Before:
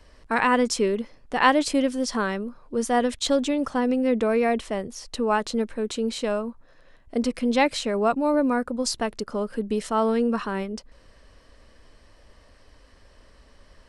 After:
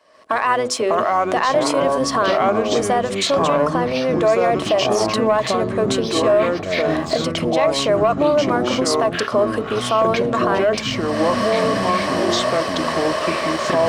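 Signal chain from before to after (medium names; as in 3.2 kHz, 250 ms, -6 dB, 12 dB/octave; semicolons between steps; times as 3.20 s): octave divider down 1 oct, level 0 dB; recorder AGC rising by 40 dB/s; high-pass 390 Hz 12 dB/octave; hum notches 50/100/150/200/250/300/350/400/450/500 Hz; ever faster or slower copies 495 ms, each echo -5 st, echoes 3; small resonant body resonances 640/1100 Hz, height 12 dB, ringing for 45 ms; waveshaping leveller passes 1; treble shelf 5.6 kHz -4 dB; peak limiter -8.5 dBFS, peak gain reduction 6.5 dB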